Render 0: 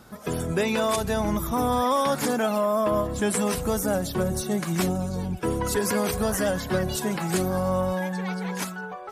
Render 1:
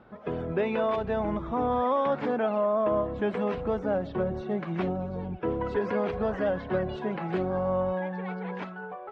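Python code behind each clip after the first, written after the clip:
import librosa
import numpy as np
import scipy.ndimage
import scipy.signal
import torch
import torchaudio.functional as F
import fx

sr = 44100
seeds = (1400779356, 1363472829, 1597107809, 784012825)

y = scipy.signal.sosfilt(scipy.signal.butter(4, 3000.0, 'lowpass', fs=sr, output='sos'), x)
y = fx.peak_eq(y, sr, hz=530.0, db=6.5, octaves=2.1)
y = F.gain(torch.from_numpy(y), -7.5).numpy()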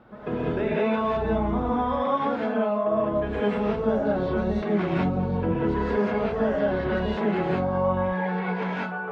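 y = fx.rev_gated(x, sr, seeds[0], gate_ms=230, shape='rising', drr_db=-7.5)
y = fx.rider(y, sr, range_db=4, speed_s=0.5)
y = F.gain(torch.from_numpy(y), -3.5).numpy()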